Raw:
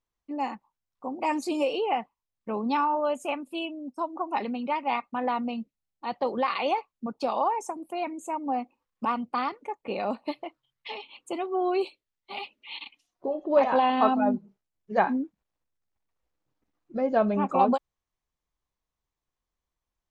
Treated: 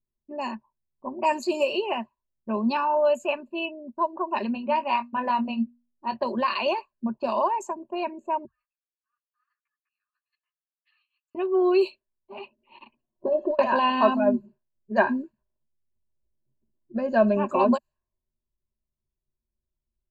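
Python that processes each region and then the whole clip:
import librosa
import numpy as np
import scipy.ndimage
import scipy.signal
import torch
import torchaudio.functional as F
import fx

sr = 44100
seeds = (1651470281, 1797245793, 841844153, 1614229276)

y = fx.chain(x, sr, fx.high_shelf(hz=7900.0, db=-4.0),
    fx.hum_notches(base_hz=60, count=4),
    fx.doubler(ms=22.0, db=-9.0), at=(4.53, 6.16))
y = fx.chain(y, sr, fx.over_compress(threshold_db=-39.0, ratio=-1.0),
    fx.cheby_ripple_highpass(hz=1200.0, ripple_db=9),
    fx.ensemble(), at=(8.45, 11.35))
y = fx.chain(y, sr, fx.high_shelf(hz=3800.0, db=-6.0),
    fx.over_compress(threshold_db=-28.0, ratio=-0.5), at=(12.8, 13.59))
y = fx.env_lowpass(y, sr, base_hz=350.0, full_db=-24.0)
y = fx.ripple_eq(y, sr, per_octave=1.4, db=15)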